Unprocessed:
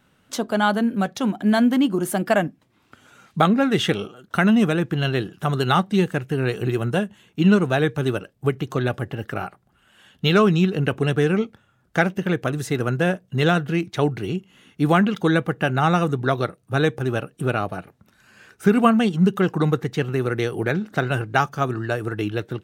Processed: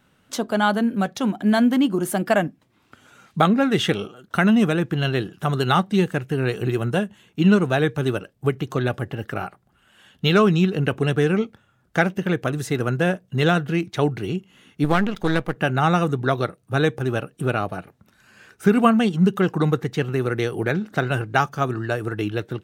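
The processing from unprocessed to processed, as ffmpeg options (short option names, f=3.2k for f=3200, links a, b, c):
-filter_complex "[0:a]asettb=1/sr,asplit=3[a][b][c];[a]atrim=end=14.844[d];[b]atrim=start=14.84:end=15.56,asetpts=PTS-STARTPTS,afade=t=in:d=0.004:c=qsin,afade=t=out:st=0.716:d=0.004:c=qsin,aeval=exprs='if(lt(val(0),0),0.251*val(0),val(0))':c=same[e];[c]atrim=start=15.556[f];[d][e]acrossfade=d=0.004:c1=hsin:c2=qsin[g];[g][f]acrossfade=d=0.004:c1=qsin:c2=hsin"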